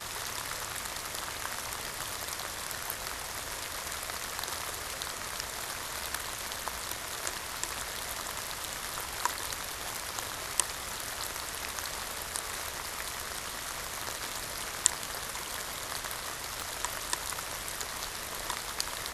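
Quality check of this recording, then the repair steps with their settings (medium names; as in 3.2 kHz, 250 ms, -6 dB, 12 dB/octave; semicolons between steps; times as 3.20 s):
16.61 s: pop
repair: de-click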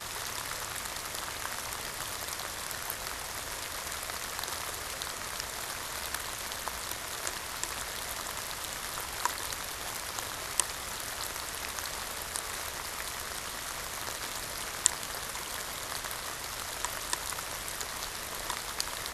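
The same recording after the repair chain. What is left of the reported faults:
16.61 s: pop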